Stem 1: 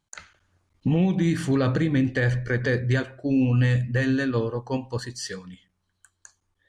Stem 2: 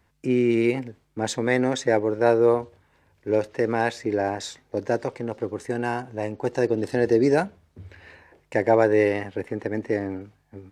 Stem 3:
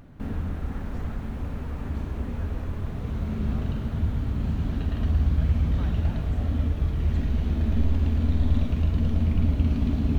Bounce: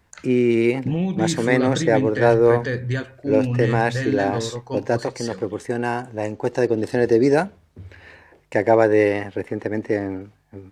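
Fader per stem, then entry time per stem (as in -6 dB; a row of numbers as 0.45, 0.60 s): -1.5 dB, +3.0 dB, off; 0.00 s, 0.00 s, off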